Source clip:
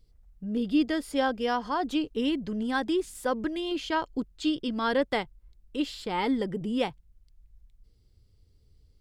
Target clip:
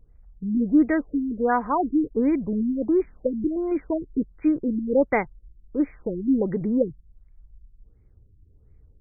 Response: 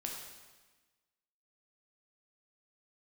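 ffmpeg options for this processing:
-af "afftfilt=real='re*lt(b*sr/1024,370*pow(2500/370,0.5+0.5*sin(2*PI*1.4*pts/sr)))':imag='im*lt(b*sr/1024,370*pow(2500/370,0.5+0.5*sin(2*PI*1.4*pts/sr)))':win_size=1024:overlap=0.75,volume=2.11"

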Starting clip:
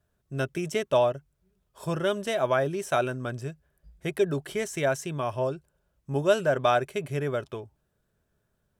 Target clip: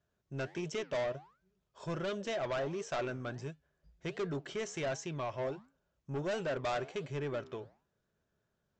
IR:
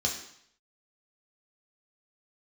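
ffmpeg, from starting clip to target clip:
-af "lowshelf=f=69:g=-11.5,aresample=16000,asoftclip=type=tanh:threshold=0.0473,aresample=44100,flanger=delay=5.4:depth=8.6:regen=-88:speed=1.4:shape=sinusoidal"

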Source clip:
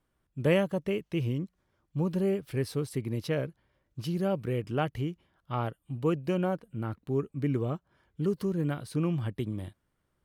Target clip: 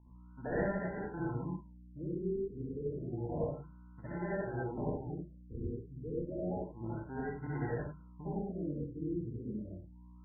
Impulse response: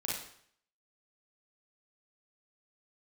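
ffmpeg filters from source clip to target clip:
-filter_complex "[0:a]bandreject=f=50:t=h:w=6,bandreject=f=100:t=h:w=6,bandreject=f=150:t=h:w=6,bandreject=f=200:t=h:w=6,bandreject=f=250:t=h:w=6,agate=range=0.0708:threshold=0.00224:ratio=16:detection=peak,lowshelf=f=420:g=-5.5,asplit=2[s0][s1];[s1]acompressor=threshold=0.0178:ratio=6,volume=0.794[s2];[s0][s2]amix=inputs=2:normalize=0,flanger=delay=2.7:depth=3.7:regen=42:speed=0.45:shape=sinusoidal,acrossover=split=800[s3][s4];[s3]aeval=exprs='0.0422*(abs(mod(val(0)/0.0422+3,4)-2)-1)':c=same[s5];[s5][s4]amix=inputs=2:normalize=0,aeval=exprs='val(0)+0.00316*(sin(2*PI*60*n/s)+sin(2*PI*2*60*n/s)/2+sin(2*PI*3*60*n/s)/3+sin(2*PI*4*60*n/s)/4+sin(2*PI*5*60*n/s)/5)':c=same,acrusher=samples=37:mix=1:aa=0.000001[s6];[1:a]atrim=start_sample=2205,atrim=end_sample=4410,asetrate=25137,aresample=44100[s7];[s6][s7]afir=irnorm=-1:irlink=0,afftfilt=real='re*lt(b*sr/1024,480*pow(2100/480,0.5+0.5*sin(2*PI*0.3*pts/sr)))':imag='im*lt(b*sr/1024,480*pow(2100/480,0.5+0.5*sin(2*PI*0.3*pts/sr)))':win_size=1024:overlap=0.75,volume=0.355"

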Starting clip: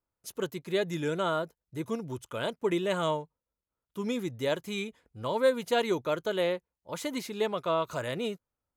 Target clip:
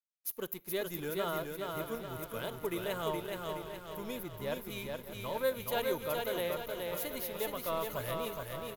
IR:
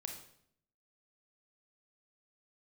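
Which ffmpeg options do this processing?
-filter_complex "[0:a]asettb=1/sr,asplit=3[s0][s1][s2];[s0]atrim=end=4.234[s3];[s1]atrim=start=4.23:end=4.7,asetpts=PTS-STARTPTS,afade=t=in:d=0.004:c=qsin,afade=t=out:st=0.466:d=0.004:c=qsin,highshelf=f=4000:g=-9[s4];[s2]atrim=start=4.696[s5];[s3][s4]acrossfade=d=0.004:c1=hsin:c2=qsin[s6];[s6][s5]acrossfade=d=0.004:c1=qsin:c2=hsin,asplit=2[s7][s8];[s8]aecho=0:1:597:0.266[s9];[s7][s9]amix=inputs=2:normalize=0,aexciter=amount=13.3:drive=3.7:freq=11000,aecho=1:1:421|842|1263|1684|2105|2526|2947:0.668|0.354|0.188|0.0995|0.0527|0.0279|0.0148,aeval=exprs='sgn(val(0))*max(abs(val(0))-0.00501,0)':c=same,asplit=2[s10][s11];[1:a]atrim=start_sample=2205[s12];[s11][s12]afir=irnorm=-1:irlink=0,volume=0.158[s13];[s10][s13]amix=inputs=2:normalize=0,asubboost=boost=9:cutoff=72,volume=0.447"

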